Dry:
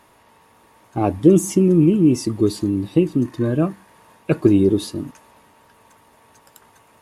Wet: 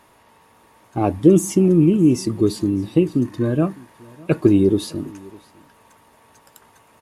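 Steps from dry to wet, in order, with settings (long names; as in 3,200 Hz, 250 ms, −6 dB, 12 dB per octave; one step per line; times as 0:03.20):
single-tap delay 606 ms −24 dB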